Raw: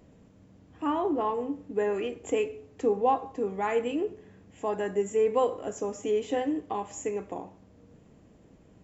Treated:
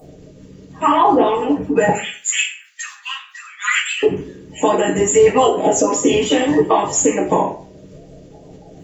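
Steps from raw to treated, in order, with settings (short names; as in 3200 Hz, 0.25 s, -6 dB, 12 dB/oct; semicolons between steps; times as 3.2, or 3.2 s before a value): bin magnitudes rounded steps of 30 dB; 1.89–4.03 steep high-pass 1400 Hz 48 dB/oct; spectral noise reduction 7 dB; harmonic-percussive split harmonic -15 dB; compressor 3:1, threshold -35 dBFS, peak gain reduction 5 dB; reverb RT60 0.40 s, pre-delay 3 ms, DRR -3 dB; maximiser +24.5 dB; gain -2.5 dB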